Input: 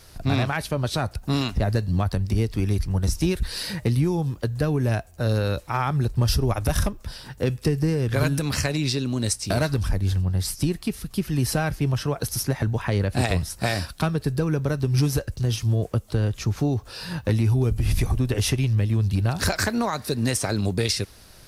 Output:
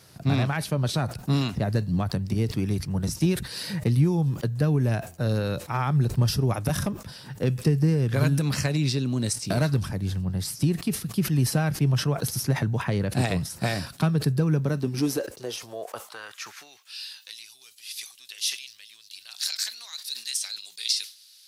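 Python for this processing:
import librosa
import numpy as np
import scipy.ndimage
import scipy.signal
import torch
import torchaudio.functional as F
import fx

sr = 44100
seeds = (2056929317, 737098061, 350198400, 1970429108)

y = fx.filter_sweep_highpass(x, sr, from_hz=140.0, to_hz=3800.0, start_s=14.54, end_s=17.17, q=1.9)
y = fx.sustainer(y, sr, db_per_s=140.0)
y = F.gain(torch.from_numpy(y), -3.5).numpy()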